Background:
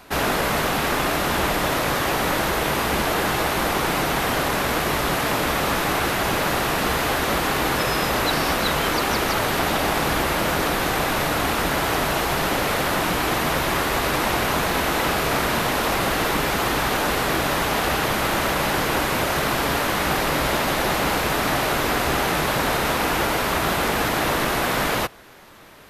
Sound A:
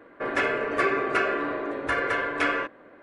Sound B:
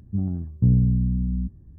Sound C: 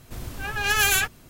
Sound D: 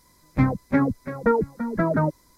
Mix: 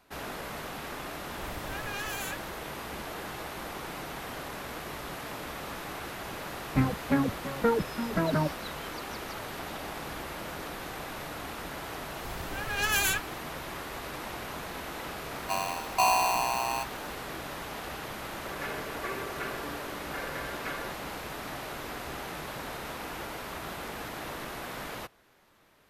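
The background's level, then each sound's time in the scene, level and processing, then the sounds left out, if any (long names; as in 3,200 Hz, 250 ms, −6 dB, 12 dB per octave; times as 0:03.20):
background −17 dB
0:01.30: mix in C −8.5 dB + downward compressor, threshold −25 dBFS
0:06.38: mix in D −5.5 dB + highs frequency-modulated by the lows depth 0.14 ms
0:12.13: mix in C −6.5 dB
0:15.36: mix in B −7 dB + ring modulator with a square carrier 870 Hz
0:18.25: mix in A −13.5 dB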